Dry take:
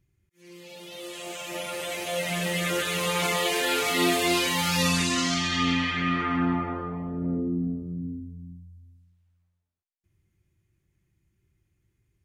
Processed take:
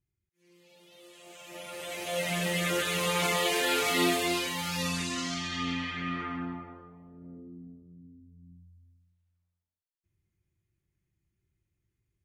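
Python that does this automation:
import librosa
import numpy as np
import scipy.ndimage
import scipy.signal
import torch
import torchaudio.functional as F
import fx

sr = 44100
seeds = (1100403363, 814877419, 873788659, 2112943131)

y = fx.gain(x, sr, db=fx.line((1.21, -14.5), (2.21, -2.0), (3.98, -2.0), (4.54, -8.0), (6.23, -8.0), (6.94, -19.0), (8.12, -19.0), (8.61, -8.5)))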